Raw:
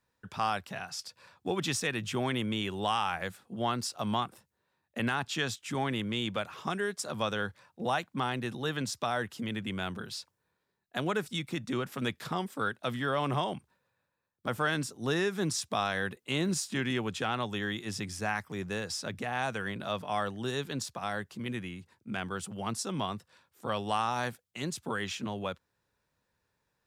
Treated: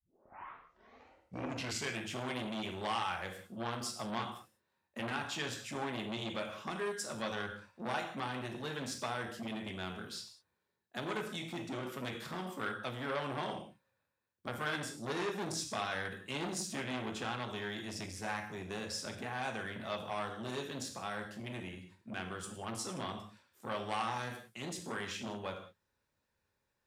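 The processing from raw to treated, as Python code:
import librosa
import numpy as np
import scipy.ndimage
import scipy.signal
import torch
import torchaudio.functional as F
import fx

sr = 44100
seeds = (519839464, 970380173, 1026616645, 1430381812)

y = fx.tape_start_head(x, sr, length_s=2.06)
y = fx.rev_gated(y, sr, seeds[0], gate_ms=220, shape='falling', drr_db=2.0)
y = fx.transformer_sat(y, sr, knee_hz=1600.0)
y = y * 10.0 ** (-5.5 / 20.0)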